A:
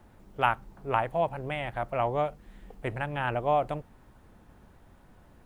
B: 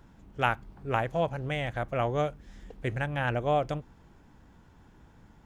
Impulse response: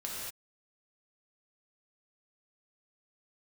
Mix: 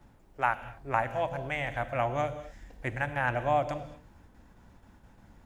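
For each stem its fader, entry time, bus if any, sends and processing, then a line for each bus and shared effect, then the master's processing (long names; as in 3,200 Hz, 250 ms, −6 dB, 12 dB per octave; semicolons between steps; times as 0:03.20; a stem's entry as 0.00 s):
−5.5 dB, 0.00 s, no send, no processing
0.0 dB, 0.00 s, polarity flipped, send −20 dB, noise gate with hold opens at −47 dBFS; thirty-one-band graphic EQ 160 Hz −5 dB, 400 Hz −12 dB, 1,250 Hz −5 dB, 3,150 Hz −4 dB; automatic gain control gain up to 10 dB; automatic ducking −12 dB, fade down 0.20 s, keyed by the first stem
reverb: on, pre-delay 3 ms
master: no processing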